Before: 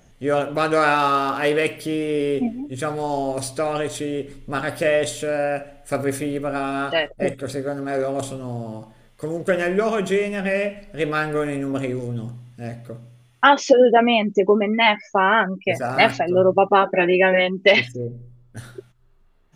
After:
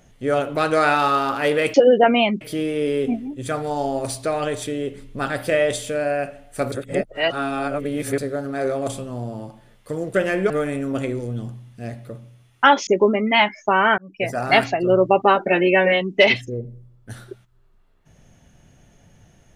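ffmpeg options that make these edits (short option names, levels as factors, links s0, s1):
-filter_complex "[0:a]asplit=8[s0][s1][s2][s3][s4][s5][s6][s7];[s0]atrim=end=1.742[s8];[s1]atrim=start=13.668:end=14.342[s9];[s2]atrim=start=1.738:end=6.052[s10];[s3]atrim=start=6.048:end=7.512,asetpts=PTS-STARTPTS,areverse[s11];[s4]atrim=start=7.508:end=9.832[s12];[s5]atrim=start=11.298:end=13.672[s13];[s6]atrim=start=14.338:end=15.45,asetpts=PTS-STARTPTS,afade=t=out:st=1.108:d=0.004:c=hsin[s14];[s7]atrim=start=15.45,asetpts=PTS-STARTPTS,afade=t=in:d=0.34[s15];[s8][s9]acrossfade=d=0.004:c1=hsin:c2=hsin[s16];[s16][s10]acrossfade=d=0.004:c1=hsin:c2=hsin[s17];[s17][s11]acrossfade=d=0.004:c1=hsin:c2=hsin[s18];[s18][s12]acrossfade=d=0.004:c1=hsin:c2=hsin[s19];[s19][s13]acrossfade=d=0.004:c1=hsin:c2=hsin[s20];[s14][s15]concat=n=2:v=0:a=1[s21];[s20][s21]acrossfade=d=0.004:c1=hsin:c2=hsin"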